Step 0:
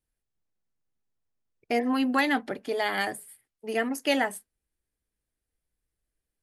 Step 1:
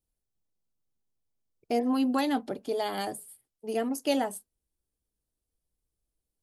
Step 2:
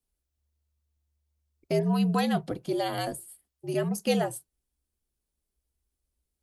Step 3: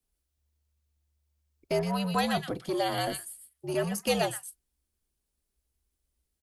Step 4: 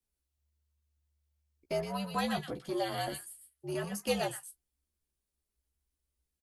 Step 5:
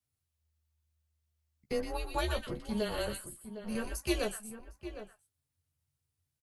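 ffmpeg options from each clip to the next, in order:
-af "equalizer=f=1.9k:w=1.4:g=-14.5"
-af "afreqshift=-73,volume=1.5dB"
-filter_complex "[0:a]acrossover=split=490|1200[a][b][c];[a]asoftclip=type=tanh:threshold=-31.5dB[d];[c]aecho=1:1:121:0.596[e];[d][b][e]amix=inputs=3:normalize=0,volume=1.5dB"
-filter_complex "[0:a]asplit=2[a][b];[b]adelay=14,volume=-5dB[c];[a][c]amix=inputs=2:normalize=0,volume=-6.5dB"
-filter_complex "[0:a]afreqshift=-150,asplit=2[a][b];[b]adelay=758,volume=-11dB,highshelf=f=4k:g=-17.1[c];[a][c]amix=inputs=2:normalize=0"

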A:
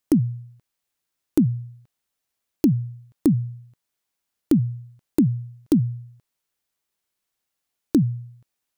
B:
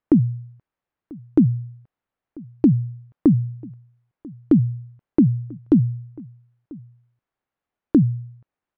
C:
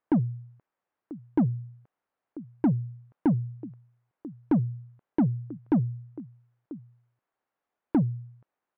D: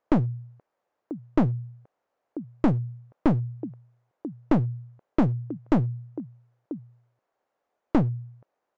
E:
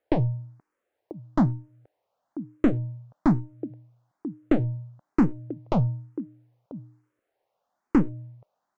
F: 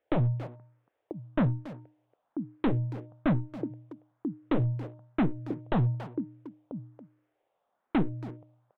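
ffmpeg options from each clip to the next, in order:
-filter_complex "[0:a]lowpass=1.6k,asplit=2[a][b];[b]adelay=991.3,volume=-23dB,highshelf=f=4k:g=-22.3[c];[a][c]amix=inputs=2:normalize=0,volume=3dB"
-filter_complex "[0:a]asplit=2[a][b];[b]highpass=f=720:p=1,volume=21dB,asoftclip=type=tanh:threshold=-5.5dB[c];[a][c]amix=inputs=2:normalize=0,lowpass=f=1k:p=1,volume=-6dB,volume=-8.5dB"
-af "equalizer=f=560:t=o:w=1.3:g=9,aresample=16000,aeval=exprs='clip(val(0),-1,0.0473)':c=same,aresample=44100,volume=2.5dB"
-filter_complex "[0:a]bandreject=f=305.3:t=h:w=4,bandreject=f=610.6:t=h:w=4,bandreject=f=915.9:t=h:w=4,asplit=2[a][b];[b]afreqshift=1.1[c];[a][c]amix=inputs=2:normalize=1,volume=3dB"
-filter_complex "[0:a]aresample=8000,asoftclip=type=hard:threshold=-21.5dB,aresample=44100,asplit=2[a][b];[b]adelay=280,highpass=300,lowpass=3.4k,asoftclip=type=hard:threshold=-30dB,volume=-7dB[c];[a][c]amix=inputs=2:normalize=0"

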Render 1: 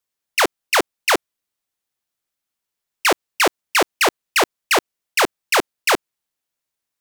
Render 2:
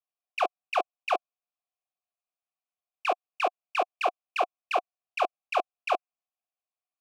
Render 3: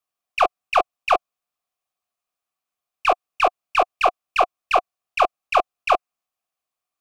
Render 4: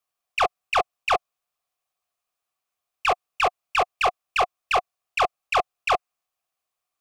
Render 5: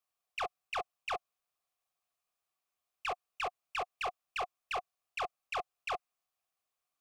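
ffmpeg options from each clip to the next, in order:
-filter_complex "[0:a]asplit=3[a][b][c];[a]bandpass=f=730:t=q:w=8,volume=0dB[d];[b]bandpass=f=1.09k:t=q:w=8,volume=-6dB[e];[c]bandpass=f=2.44k:t=q:w=8,volume=-9dB[f];[d][e][f]amix=inputs=3:normalize=0"
-af "equalizer=f=1.2k:t=o:w=0.26:g=6,aeval=exprs='0.237*(cos(1*acos(clip(val(0)/0.237,-1,1)))-cos(1*PI/2))+0.00531*(cos(6*acos(clip(val(0)/0.237,-1,1)))-cos(6*PI/2))':c=same,volume=7.5dB"
-af "equalizer=f=240:w=2.2:g=-6.5,asoftclip=type=tanh:threshold=-17dB,volume=2dB"
-af "alimiter=level_in=2dB:limit=-24dB:level=0:latency=1:release=15,volume=-2dB,volume=-4.5dB"

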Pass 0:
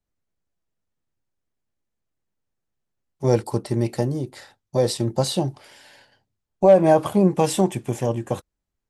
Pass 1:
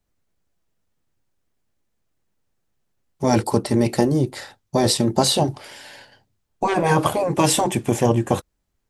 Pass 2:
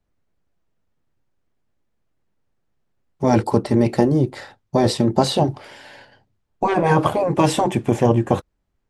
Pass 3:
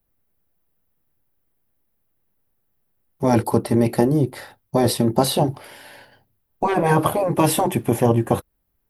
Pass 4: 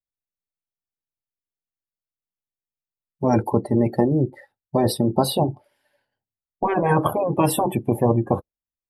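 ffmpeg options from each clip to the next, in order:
-af "afftfilt=real='re*lt(hypot(re,im),0.631)':imag='im*lt(hypot(re,im),0.631)':win_size=1024:overlap=0.75,volume=8dB"
-af "lowpass=f=2.2k:p=1,volume=2dB"
-af "aexciter=amount=10.6:drive=4.2:freq=10k,volume=-1dB"
-af "afftdn=nr=26:nf=-29,volume=-1.5dB"

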